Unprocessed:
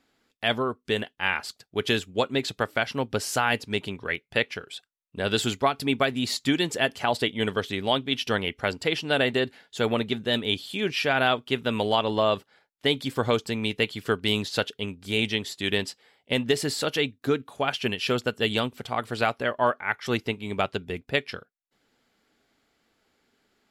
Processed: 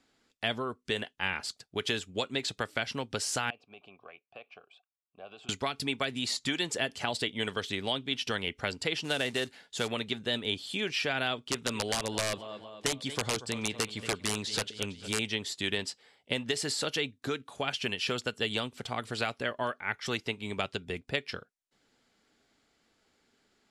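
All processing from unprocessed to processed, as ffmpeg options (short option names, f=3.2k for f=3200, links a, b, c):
-filter_complex "[0:a]asettb=1/sr,asplit=3[a][b][c];[a]atrim=end=3.504[d];[b]atrim=start=3.5:end=5.49,asetpts=PTS-STARTPTS,afade=t=in:d=0.004:c=qsin,afade=t=out:st=1.986:d=0.004:c=qsin,bass=f=250:g=5,treble=f=4k:g=-4,acompressor=threshold=-26dB:ratio=6:attack=3.2:release=140:knee=1:detection=peak,asplit=3[e][f][g];[e]bandpass=f=730:t=q:w=8,volume=0dB[h];[f]bandpass=f=1.09k:t=q:w=8,volume=-6dB[i];[g]bandpass=f=2.44k:t=q:w=8,volume=-9dB[j];[h][i][j]amix=inputs=3:normalize=0[k];[c]atrim=start=5.486[l];[d][k]acrossfade=d=0.004:c1=hsin:c2=qsin[m];[m][l]acrossfade=d=0.004:c1=qsin:c2=hsin,asettb=1/sr,asplit=3[n][o][p];[n]atrim=end=9.044[q];[o]atrim=start=9.04:end=9.88,asetpts=PTS-STARTPTS,afade=t=in:d=0.004:c=qsin,afade=t=out:st=0.836:d=0.004:c=qsin,highshelf=f=9.5k:g=3.5,acrusher=bits=4:mode=log:mix=0:aa=0.000001[r];[p]atrim=start=9.876[s];[q][r]acrossfade=d=0.004:c1=hsin:c2=qsin[t];[t][s]acrossfade=d=0.004:c1=qsin:c2=hsin,asettb=1/sr,asplit=3[u][v][w];[u]atrim=end=11.484[x];[v]atrim=start=11.48:end=15.19,asetpts=PTS-STARTPTS,afade=t=in:d=0.004:c=qsin,afade=t=out:st=3.706:d=0.004:c=qsin,lowpass=f=11k:w=0.5412,lowpass=f=11k:w=1.3066,aecho=1:1:229|458|687|916:0.133|0.0653|0.032|0.0157,atrim=end_sample=163611,aeval=exprs='(mod(5.31*val(0)+1,2)-1)/5.31':c=same[y];[w]atrim=start=15.186[z];[x][y]acrossfade=d=0.004:c1=hsin:c2=qsin[aa];[aa][z]acrossfade=d=0.004:c1=qsin:c2=hsin,lowpass=f=10k:w=0.5412,lowpass=f=10k:w=1.3066,bass=f=250:g=1,treble=f=4k:g=4,acrossover=split=530|1700[ab][ac][ad];[ab]acompressor=threshold=-34dB:ratio=4[ae];[ac]acompressor=threshold=-35dB:ratio=4[af];[ad]acompressor=threshold=-28dB:ratio=4[ag];[ae][af][ag]amix=inputs=3:normalize=0,volume=-2dB"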